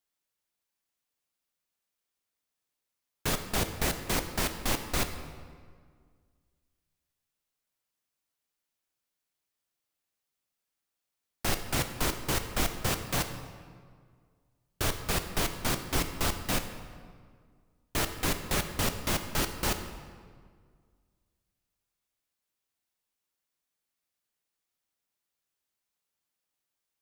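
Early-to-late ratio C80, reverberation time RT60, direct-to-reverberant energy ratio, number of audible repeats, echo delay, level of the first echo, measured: 10.0 dB, 1.9 s, 7.0 dB, none, none, none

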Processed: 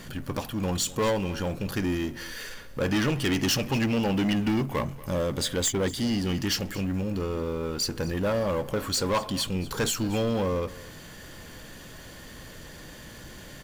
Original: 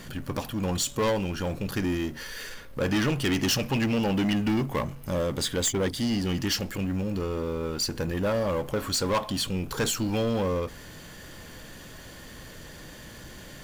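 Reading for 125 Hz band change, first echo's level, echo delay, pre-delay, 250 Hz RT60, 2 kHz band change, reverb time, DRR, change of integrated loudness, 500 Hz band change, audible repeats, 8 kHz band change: 0.0 dB, -19.0 dB, 0.236 s, none, none, 0.0 dB, none, none, 0.0 dB, 0.0 dB, 1, 0.0 dB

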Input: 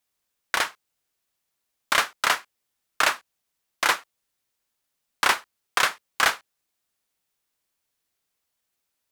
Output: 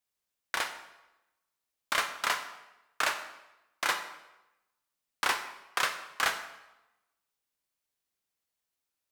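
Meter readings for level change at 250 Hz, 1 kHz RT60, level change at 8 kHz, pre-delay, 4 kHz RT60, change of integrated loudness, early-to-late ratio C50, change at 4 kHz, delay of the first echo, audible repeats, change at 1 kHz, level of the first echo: -7.5 dB, 0.95 s, -7.5 dB, 12 ms, 0.80 s, -7.5 dB, 10.0 dB, -7.5 dB, none, none, -7.0 dB, none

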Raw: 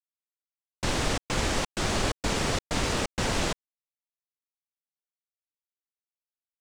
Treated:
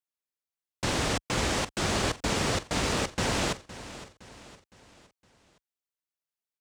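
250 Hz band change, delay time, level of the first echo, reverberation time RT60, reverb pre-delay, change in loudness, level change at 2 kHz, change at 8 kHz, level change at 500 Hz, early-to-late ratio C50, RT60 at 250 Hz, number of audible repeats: 0.0 dB, 0.513 s, -15.5 dB, none, none, 0.0 dB, 0.0 dB, 0.0 dB, 0.0 dB, none, none, 3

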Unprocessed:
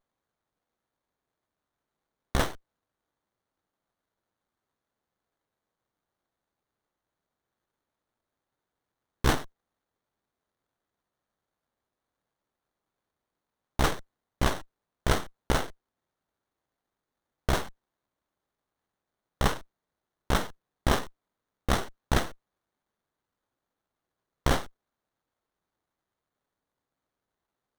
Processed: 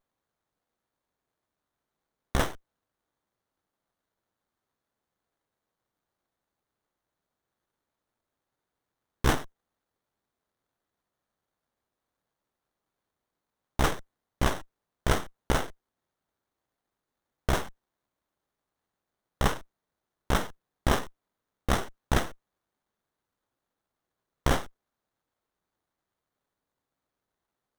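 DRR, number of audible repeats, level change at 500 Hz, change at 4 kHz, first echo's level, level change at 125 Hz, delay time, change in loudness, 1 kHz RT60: none, none, 0.0 dB, -1.5 dB, none, 0.0 dB, none, 0.0 dB, none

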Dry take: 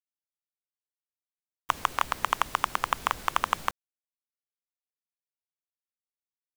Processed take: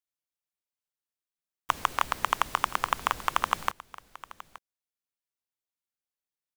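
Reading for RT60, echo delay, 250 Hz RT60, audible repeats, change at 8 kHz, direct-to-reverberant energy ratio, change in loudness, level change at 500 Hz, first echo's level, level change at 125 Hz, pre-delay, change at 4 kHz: none, 0.873 s, none, 1, 0.0 dB, none, 0.0 dB, 0.0 dB, -18.5 dB, 0.0 dB, none, 0.0 dB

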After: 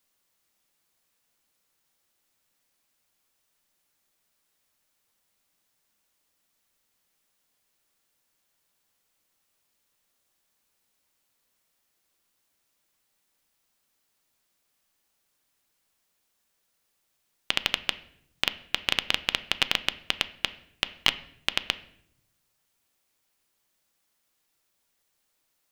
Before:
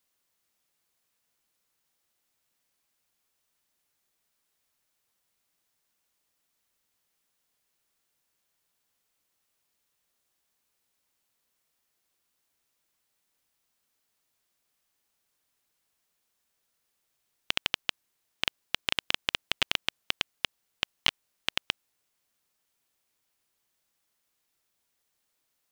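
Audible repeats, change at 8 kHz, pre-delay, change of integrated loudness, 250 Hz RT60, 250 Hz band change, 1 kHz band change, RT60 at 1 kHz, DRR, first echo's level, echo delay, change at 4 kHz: none, +3.0 dB, 3 ms, +3.0 dB, 1.2 s, +4.0 dB, +3.5 dB, 0.65 s, 12.0 dB, none, none, +3.0 dB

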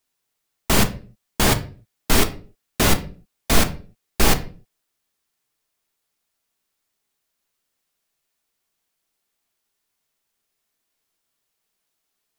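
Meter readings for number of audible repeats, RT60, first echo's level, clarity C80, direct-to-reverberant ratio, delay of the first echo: none, 0.40 s, none, 20.0 dB, 6.5 dB, none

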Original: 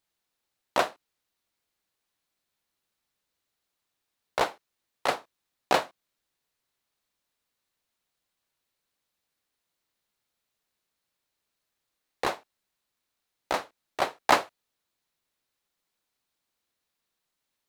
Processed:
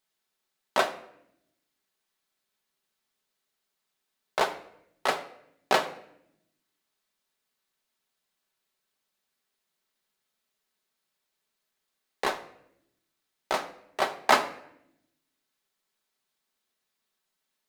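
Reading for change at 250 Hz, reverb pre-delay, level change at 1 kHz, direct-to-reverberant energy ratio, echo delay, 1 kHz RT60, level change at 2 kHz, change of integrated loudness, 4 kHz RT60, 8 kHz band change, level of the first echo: -1.0 dB, 5 ms, 0.0 dB, 5.5 dB, none, 0.65 s, +1.5 dB, 0.0 dB, 0.60 s, +1.0 dB, none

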